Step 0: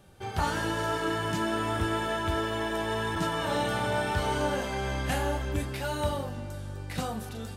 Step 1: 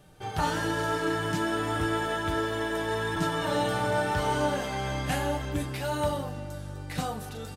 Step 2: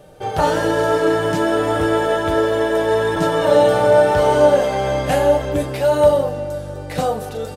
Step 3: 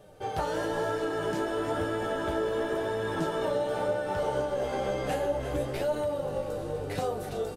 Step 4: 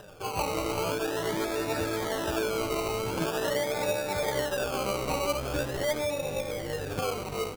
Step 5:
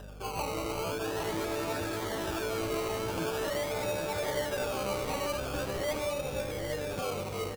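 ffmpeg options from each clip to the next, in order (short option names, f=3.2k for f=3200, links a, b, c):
-af "aecho=1:1:6.6:0.45"
-af "equalizer=f=540:t=o:w=0.9:g=13.5,volume=6dB"
-filter_complex "[0:a]asplit=8[a][b][c][d][e][f][g][h];[b]adelay=335,afreqshift=-61,volume=-12dB[i];[c]adelay=670,afreqshift=-122,volume=-16dB[j];[d]adelay=1005,afreqshift=-183,volume=-20dB[k];[e]adelay=1340,afreqshift=-244,volume=-24dB[l];[f]adelay=1675,afreqshift=-305,volume=-28.1dB[m];[g]adelay=2010,afreqshift=-366,volume=-32.1dB[n];[h]adelay=2345,afreqshift=-427,volume=-36.1dB[o];[a][i][j][k][l][m][n][o]amix=inputs=8:normalize=0,acompressor=threshold=-18dB:ratio=6,flanger=delay=9.4:depth=6.8:regen=45:speed=1:shape=sinusoidal,volume=-4.5dB"
-af "acompressor=mode=upward:threshold=-43dB:ratio=2.5,acrusher=samples=20:mix=1:aa=0.000001:lfo=1:lforange=12:lforate=0.44"
-filter_complex "[0:a]aeval=exprs='val(0)+0.00708*(sin(2*PI*50*n/s)+sin(2*PI*2*50*n/s)/2+sin(2*PI*3*50*n/s)/3+sin(2*PI*4*50*n/s)/4+sin(2*PI*5*50*n/s)/5)':c=same,asoftclip=type=tanh:threshold=-24dB,asplit=2[a][b];[b]aecho=0:1:810:0.501[c];[a][c]amix=inputs=2:normalize=0,volume=-2.5dB"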